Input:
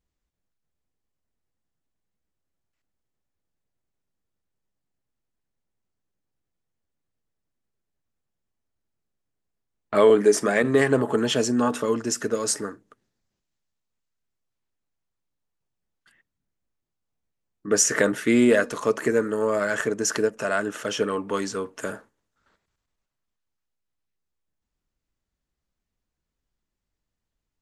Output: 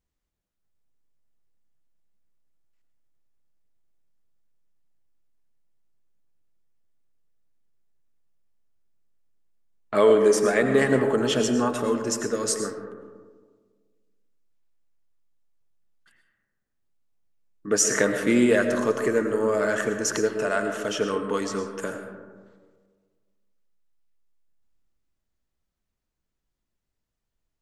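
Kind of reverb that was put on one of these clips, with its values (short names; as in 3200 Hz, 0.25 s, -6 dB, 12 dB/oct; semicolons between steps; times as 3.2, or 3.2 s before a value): digital reverb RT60 1.6 s, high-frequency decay 0.3×, pre-delay 65 ms, DRR 6 dB; gain -1.5 dB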